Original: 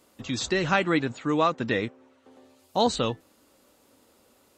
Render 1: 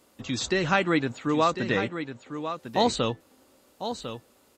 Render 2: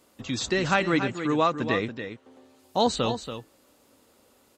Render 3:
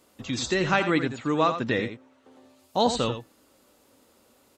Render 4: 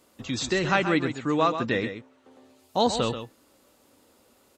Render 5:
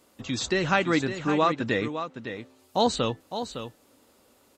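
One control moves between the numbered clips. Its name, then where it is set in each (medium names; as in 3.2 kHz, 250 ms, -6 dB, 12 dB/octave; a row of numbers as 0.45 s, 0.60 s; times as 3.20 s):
delay, time: 1050 ms, 282 ms, 85 ms, 131 ms, 559 ms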